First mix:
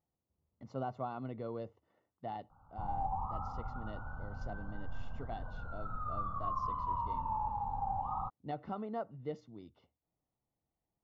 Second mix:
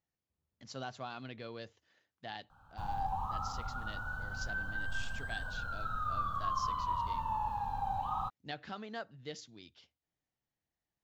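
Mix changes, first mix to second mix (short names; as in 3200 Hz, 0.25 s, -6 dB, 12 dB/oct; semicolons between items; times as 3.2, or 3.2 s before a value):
speech -5.0 dB; master: remove polynomial smoothing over 65 samples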